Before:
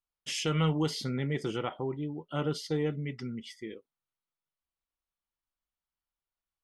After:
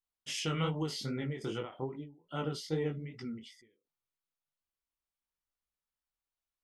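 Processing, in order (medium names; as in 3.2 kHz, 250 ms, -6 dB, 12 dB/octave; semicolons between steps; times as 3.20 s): chorus 2.5 Hz, delay 18 ms, depth 5.4 ms; endings held to a fixed fall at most 130 dB/s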